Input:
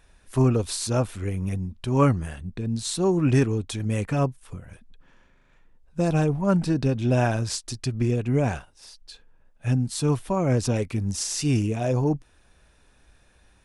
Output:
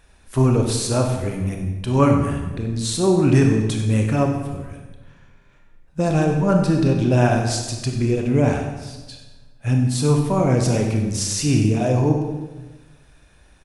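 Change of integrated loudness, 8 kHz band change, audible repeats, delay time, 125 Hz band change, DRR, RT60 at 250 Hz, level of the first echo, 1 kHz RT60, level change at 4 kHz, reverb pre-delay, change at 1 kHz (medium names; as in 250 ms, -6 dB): +5.0 dB, +4.5 dB, 1, 95 ms, +5.0 dB, 2.5 dB, 1.4 s, -12.5 dB, 1.1 s, +5.0 dB, 23 ms, +5.0 dB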